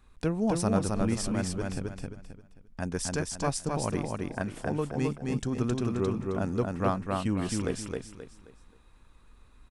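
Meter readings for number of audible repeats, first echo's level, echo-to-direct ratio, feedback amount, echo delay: 4, −3.0 dB, −2.5 dB, 32%, 265 ms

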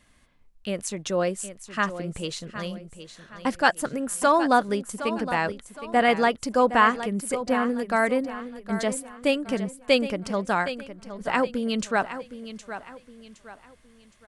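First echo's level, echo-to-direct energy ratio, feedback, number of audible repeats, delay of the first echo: −12.0 dB, −11.5 dB, 36%, 3, 765 ms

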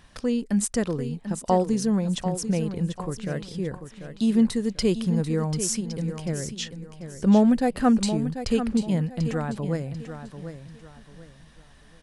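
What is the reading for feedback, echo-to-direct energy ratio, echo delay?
31%, −9.5 dB, 741 ms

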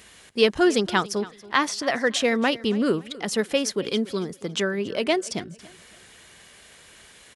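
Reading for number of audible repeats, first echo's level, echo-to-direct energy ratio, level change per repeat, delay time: 2, −19.5 dB, −19.0 dB, −10.0 dB, 279 ms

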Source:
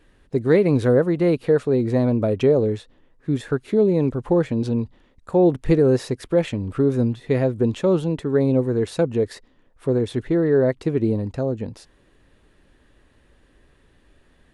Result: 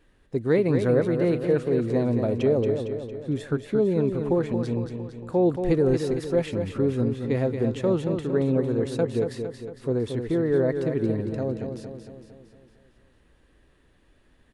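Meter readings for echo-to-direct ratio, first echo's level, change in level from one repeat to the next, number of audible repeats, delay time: −5.5 dB, −7.0 dB, −5.5 dB, 6, 228 ms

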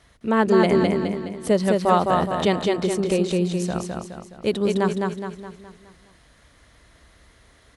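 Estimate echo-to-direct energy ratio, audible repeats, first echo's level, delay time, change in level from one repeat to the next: −2.0 dB, 5, −3.0 dB, 209 ms, −6.5 dB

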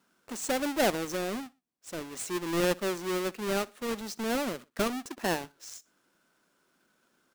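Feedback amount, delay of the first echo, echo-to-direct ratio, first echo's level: 38%, 61 ms, −23.0 dB, −23.5 dB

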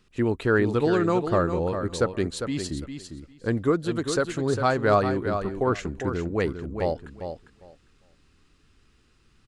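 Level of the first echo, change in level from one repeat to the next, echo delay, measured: −8.0 dB, −16.0 dB, 402 ms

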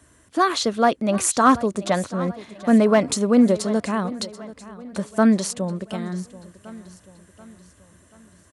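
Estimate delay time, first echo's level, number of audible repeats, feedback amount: 734 ms, −17.5 dB, 3, 49%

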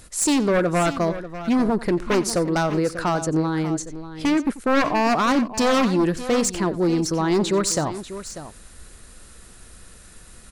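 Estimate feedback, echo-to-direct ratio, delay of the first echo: repeats not evenly spaced, −12.0 dB, 90 ms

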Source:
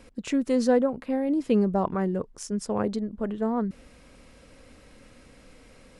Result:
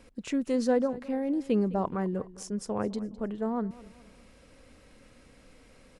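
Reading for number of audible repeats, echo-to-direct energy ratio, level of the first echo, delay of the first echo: 3, −18.0 dB, −19.0 dB, 208 ms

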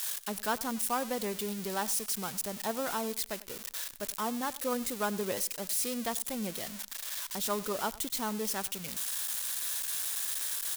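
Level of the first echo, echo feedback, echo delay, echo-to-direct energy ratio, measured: −20.0 dB, 22%, 97 ms, −20.0 dB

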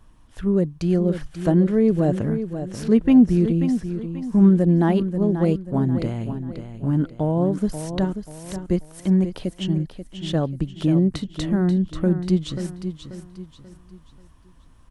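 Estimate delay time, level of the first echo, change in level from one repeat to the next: 536 ms, −9.5 dB, −8.5 dB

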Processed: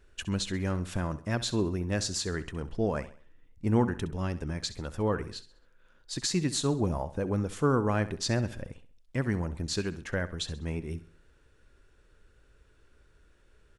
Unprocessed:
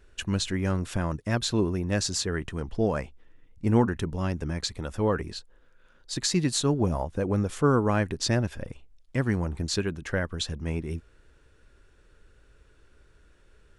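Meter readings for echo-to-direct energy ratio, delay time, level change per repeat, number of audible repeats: −14.5 dB, 66 ms, −8.0 dB, 3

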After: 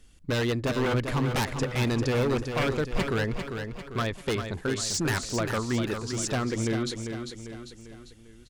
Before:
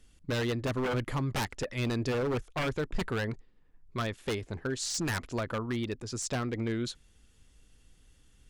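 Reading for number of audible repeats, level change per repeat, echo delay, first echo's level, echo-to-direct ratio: 4, −6.0 dB, 397 ms, −7.0 dB, −6.0 dB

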